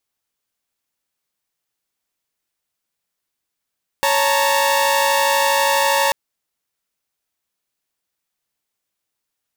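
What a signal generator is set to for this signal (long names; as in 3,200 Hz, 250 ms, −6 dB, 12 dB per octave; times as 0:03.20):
held notes C#5/A5/A#5 saw, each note −16.5 dBFS 2.09 s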